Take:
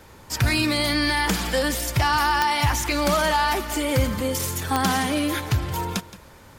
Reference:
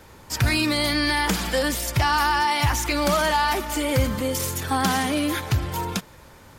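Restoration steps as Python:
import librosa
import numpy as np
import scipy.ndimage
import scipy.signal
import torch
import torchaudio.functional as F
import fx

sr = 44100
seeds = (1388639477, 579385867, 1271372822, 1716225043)

y = fx.fix_declip(x, sr, threshold_db=-11.0)
y = fx.fix_declick_ar(y, sr, threshold=10.0)
y = fx.fix_echo_inverse(y, sr, delay_ms=171, level_db=-16.5)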